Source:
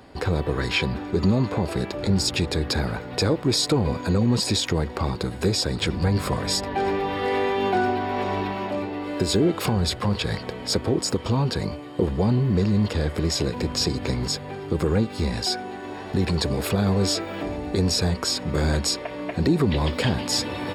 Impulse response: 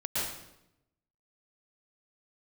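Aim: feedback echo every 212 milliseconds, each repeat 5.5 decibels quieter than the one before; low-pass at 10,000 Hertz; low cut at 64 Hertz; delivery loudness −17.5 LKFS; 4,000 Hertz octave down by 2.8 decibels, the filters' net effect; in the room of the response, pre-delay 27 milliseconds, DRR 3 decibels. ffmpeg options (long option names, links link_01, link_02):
-filter_complex "[0:a]highpass=64,lowpass=10000,equalizer=frequency=4000:width_type=o:gain=-3.5,aecho=1:1:212|424|636|848|1060|1272|1484:0.531|0.281|0.149|0.079|0.0419|0.0222|0.0118,asplit=2[link_01][link_02];[1:a]atrim=start_sample=2205,adelay=27[link_03];[link_02][link_03]afir=irnorm=-1:irlink=0,volume=-10dB[link_04];[link_01][link_04]amix=inputs=2:normalize=0,volume=4dB"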